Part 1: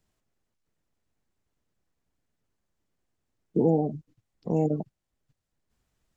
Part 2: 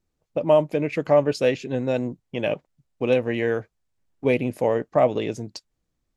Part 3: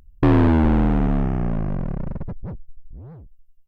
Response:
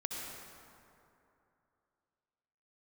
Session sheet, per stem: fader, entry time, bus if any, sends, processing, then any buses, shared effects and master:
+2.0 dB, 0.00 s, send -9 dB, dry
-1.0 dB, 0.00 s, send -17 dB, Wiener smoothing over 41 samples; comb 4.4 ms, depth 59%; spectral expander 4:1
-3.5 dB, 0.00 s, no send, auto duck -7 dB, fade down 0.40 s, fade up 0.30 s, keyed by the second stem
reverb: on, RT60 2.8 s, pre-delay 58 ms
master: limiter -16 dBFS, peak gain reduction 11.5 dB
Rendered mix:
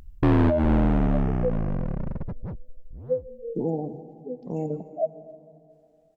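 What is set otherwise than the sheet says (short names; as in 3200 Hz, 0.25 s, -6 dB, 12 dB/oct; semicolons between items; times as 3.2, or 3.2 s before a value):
stem 1 +2.0 dB -> -7.0 dB; stem 3 -3.5 dB -> +4.5 dB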